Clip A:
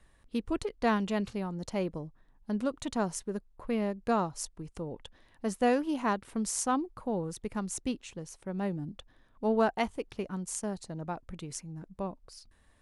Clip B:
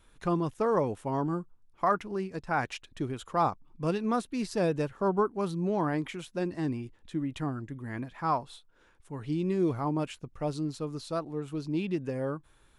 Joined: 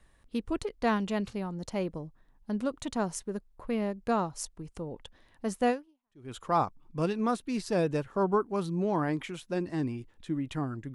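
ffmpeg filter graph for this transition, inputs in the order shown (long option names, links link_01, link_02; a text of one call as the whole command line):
ffmpeg -i cue0.wav -i cue1.wav -filter_complex "[0:a]apad=whole_dur=10.94,atrim=end=10.94,atrim=end=6.32,asetpts=PTS-STARTPTS[link_01];[1:a]atrim=start=2.55:end=7.79,asetpts=PTS-STARTPTS[link_02];[link_01][link_02]acrossfade=duration=0.62:curve1=exp:curve2=exp" out.wav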